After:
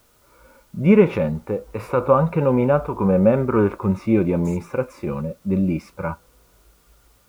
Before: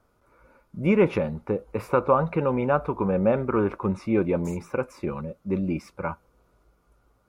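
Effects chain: harmonic-percussive split harmonic +9 dB; word length cut 10-bit, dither triangular; trim -1 dB

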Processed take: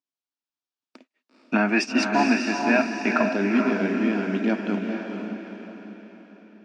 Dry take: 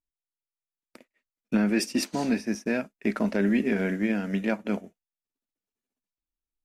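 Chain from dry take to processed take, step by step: time-frequency box 1.36–3.22 s, 600–2900 Hz +10 dB; cabinet simulation 250–6100 Hz, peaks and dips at 260 Hz +6 dB, 510 Hz -6 dB, 2 kHz -8 dB; echo that smears into a reverb 463 ms, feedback 47%, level -4 dB; trim +2.5 dB

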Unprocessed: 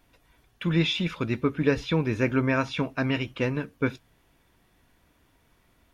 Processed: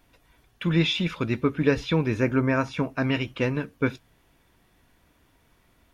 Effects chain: 2.13–3.02 s: dynamic bell 3.4 kHz, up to -8 dB, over -47 dBFS, Q 1.3; trim +1.5 dB

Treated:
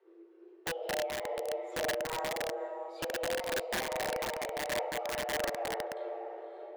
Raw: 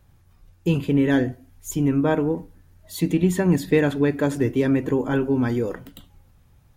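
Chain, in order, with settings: block-companded coder 5-bit; reverberation RT60 0.85 s, pre-delay 5 ms, DRR -1.5 dB; frequency shift +330 Hz; compression 10:1, threshold -22 dBFS, peak gain reduction 15 dB; low-pass 2.5 kHz 12 dB/octave; echo that smears into a reverb 556 ms, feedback 43%, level -7 dB; integer overflow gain 18 dB; random flutter of the level, depth 50%; trim -7 dB

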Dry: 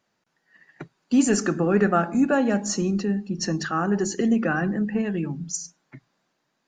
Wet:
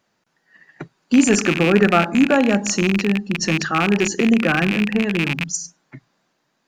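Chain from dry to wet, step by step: rattle on loud lows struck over -31 dBFS, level -15 dBFS; trim +5 dB

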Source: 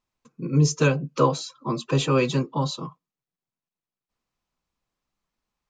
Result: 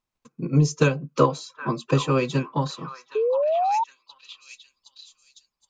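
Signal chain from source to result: repeats whose band climbs or falls 767 ms, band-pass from 1.3 kHz, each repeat 0.7 oct, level -6.5 dB; transient shaper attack +6 dB, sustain -2 dB; painted sound rise, 3.15–3.84 s, 420–940 Hz -19 dBFS; trim -2.5 dB

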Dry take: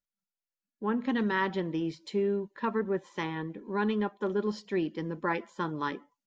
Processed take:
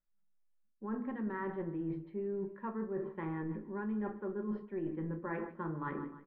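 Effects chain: low-pass 1.8 kHz 24 dB/octave; feedback delay 152 ms, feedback 39%, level -18 dB; simulated room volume 260 m³, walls furnished, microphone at 1 m; reverse; compression 5:1, threshold -37 dBFS, peak gain reduction 14.5 dB; reverse; bass shelf 72 Hz +9.5 dB

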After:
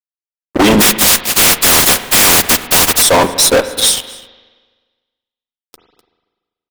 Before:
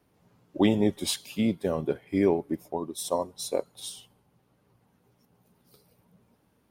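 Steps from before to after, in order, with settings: 0.80–3.01 s: spectral contrast reduction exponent 0.12; comb 4.1 ms, depth 34%; harmonic-percussive split harmonic -15 dB; peak limiter -19 dBFS, peak gain reduction 7.5 dB; level rider gain up to 13 dB; fuzz box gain 32 dB, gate -40 dBFS; echo from a far wall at 43 m, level -19 dB; spring tank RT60 1.4 s, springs 37/48 ms, chirp 55 ms, DRR 11.5 dB; endings held to a fixed fall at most 470 dB/s; trim +6.5 dB

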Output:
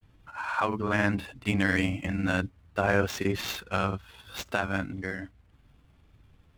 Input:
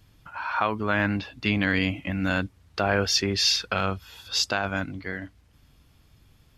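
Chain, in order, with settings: median filter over 9 samples; granulator, spray 29 ms, pitch spread up and down by 0 st

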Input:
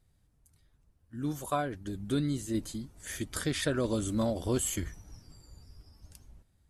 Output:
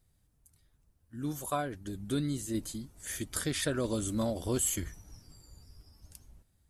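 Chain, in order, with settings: treble shelf 7.3 kHz +8 dB; trim -2 dB

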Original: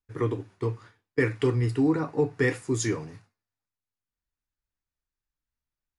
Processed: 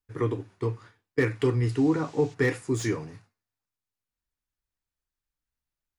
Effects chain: 1.65–2.33 s: band noise 1.8–7.4 kHz -56 dBFS; slew-rate limiter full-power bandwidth 120 Hz

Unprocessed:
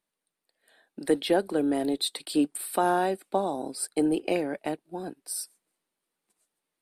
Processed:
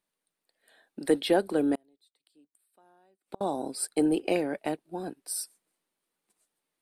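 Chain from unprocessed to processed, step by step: 1.75–3.41 s: inverted gate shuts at -30 dBFS, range -38 dB

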